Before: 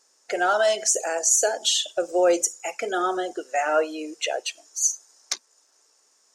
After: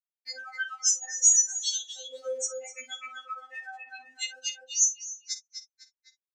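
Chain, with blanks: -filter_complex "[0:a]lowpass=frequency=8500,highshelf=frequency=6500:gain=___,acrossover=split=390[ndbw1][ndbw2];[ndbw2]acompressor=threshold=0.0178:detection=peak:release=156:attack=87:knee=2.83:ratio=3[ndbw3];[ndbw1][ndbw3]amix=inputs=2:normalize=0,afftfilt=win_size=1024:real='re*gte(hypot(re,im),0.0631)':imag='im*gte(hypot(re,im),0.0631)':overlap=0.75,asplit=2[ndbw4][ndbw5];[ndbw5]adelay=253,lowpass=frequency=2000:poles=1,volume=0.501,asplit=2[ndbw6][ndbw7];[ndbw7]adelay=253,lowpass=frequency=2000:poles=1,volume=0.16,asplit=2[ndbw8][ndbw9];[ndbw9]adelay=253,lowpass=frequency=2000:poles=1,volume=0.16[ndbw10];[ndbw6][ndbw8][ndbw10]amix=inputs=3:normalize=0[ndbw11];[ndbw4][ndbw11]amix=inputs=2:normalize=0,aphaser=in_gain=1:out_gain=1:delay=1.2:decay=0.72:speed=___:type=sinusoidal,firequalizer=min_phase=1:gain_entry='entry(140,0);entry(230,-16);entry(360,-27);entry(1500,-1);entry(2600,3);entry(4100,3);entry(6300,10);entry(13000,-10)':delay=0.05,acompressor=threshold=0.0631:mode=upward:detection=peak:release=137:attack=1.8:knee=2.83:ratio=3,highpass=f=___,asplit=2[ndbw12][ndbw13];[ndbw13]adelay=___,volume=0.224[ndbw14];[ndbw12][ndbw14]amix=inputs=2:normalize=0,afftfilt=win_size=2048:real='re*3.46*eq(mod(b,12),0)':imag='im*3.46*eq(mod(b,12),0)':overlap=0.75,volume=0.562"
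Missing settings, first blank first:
8.5, 0.39, 57, 50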